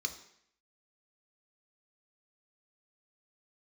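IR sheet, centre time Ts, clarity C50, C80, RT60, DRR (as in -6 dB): 11 ms, 11.0 dB, 14.0 dB, 0.70 s, 4.5 dB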